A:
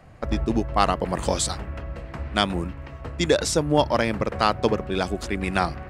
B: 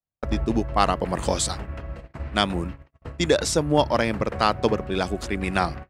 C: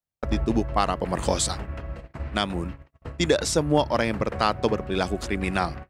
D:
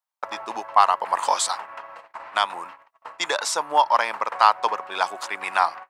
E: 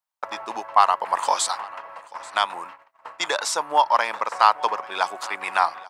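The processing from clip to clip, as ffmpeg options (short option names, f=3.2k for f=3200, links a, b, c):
-af "agate=range=-48dB:threshold=-33dB:ratio=16:detection=peak"
-af "alimiter=limit=-7.5dB:level=0:latency=1:release=368"
-af "highpass=f=950:t=q:w=3.8,volume=1dB"
-af "aecho=1:1:836:0.0841"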